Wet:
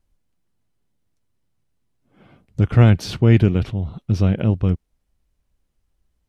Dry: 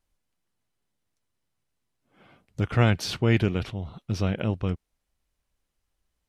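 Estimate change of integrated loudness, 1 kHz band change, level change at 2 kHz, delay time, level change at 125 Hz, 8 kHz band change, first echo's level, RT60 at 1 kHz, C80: +8.0 dB, +2.0 dB, +0.5 dB, no echo audible, +10.0 dB, can't be measured, no echo audible, no reverb audible, no reverb audible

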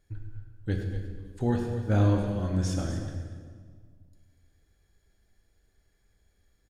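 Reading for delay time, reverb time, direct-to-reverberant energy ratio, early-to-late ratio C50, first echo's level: 105 ms, 1.7 s, 1.0 dB, 3.0 dB, −11.5 dB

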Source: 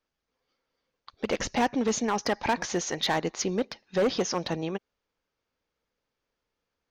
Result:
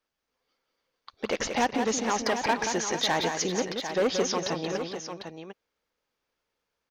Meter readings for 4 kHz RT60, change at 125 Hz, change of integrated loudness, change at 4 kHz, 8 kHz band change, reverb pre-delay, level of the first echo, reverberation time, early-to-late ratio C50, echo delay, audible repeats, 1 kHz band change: no reverb audible, −2.0 dB, +0.5 dB, +2.5 dB, +2.5 dB, no reverb audible, −6.5 dB, no reverb audible, no reverb audible, 179 ms, 3, +1.5 dB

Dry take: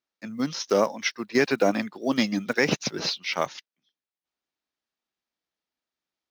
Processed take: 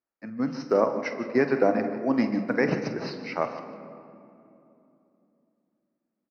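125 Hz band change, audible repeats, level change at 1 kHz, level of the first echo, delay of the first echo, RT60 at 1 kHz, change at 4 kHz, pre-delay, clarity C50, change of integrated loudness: 0.0 dB, 2, 0.0 dB, −14.0 dB, 49 ms, 2.6 s, −14.5 dB, 6 ms, 8.5 dB, −0.5 dB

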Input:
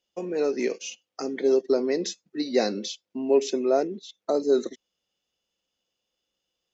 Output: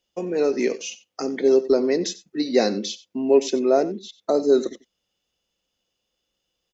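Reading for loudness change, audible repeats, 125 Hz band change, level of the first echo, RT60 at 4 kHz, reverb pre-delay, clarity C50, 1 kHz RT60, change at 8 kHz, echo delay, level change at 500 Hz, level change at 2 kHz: +4.0 dB, 1, can't be measured, −17.5 dB, no reverb audible, no reverb audible, no reverb audible, no reverb audible, can't be measured, 91 ms, +4.0 dB, +3.5 dB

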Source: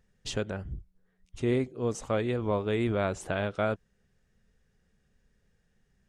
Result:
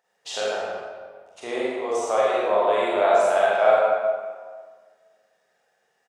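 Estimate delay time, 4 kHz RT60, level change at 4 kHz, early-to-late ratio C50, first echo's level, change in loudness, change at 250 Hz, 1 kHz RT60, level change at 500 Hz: 43 ms, 1.1 s, +8.0 dB, −4.0 dB, −3.0 dB, +9.0 dB, −4.0 dB, 1.6 s, +11.0 dB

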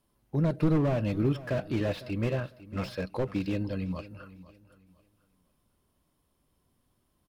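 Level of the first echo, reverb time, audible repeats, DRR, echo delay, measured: −17.0 dB, no reverb audible, 2, no reverb audible, 502 ms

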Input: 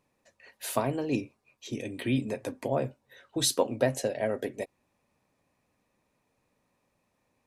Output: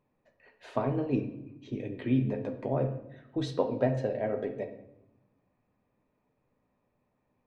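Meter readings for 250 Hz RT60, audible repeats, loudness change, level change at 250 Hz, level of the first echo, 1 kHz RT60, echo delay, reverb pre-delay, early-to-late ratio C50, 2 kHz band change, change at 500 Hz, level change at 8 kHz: 1.5 s, no echo audible, −1.0 dB, +1.0 dB, no echo audible, 0.80 s, no echo audible, 5 ms, 10.0 dB, −6.5 dB, −1.0 dB, below −20 dB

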